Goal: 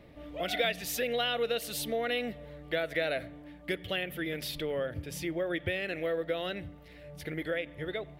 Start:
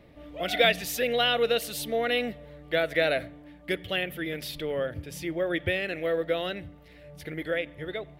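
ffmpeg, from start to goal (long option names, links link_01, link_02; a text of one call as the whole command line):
ffmpeg -i in.wav -af "acompressor=threshold=-32dB:ratio=2" out.wav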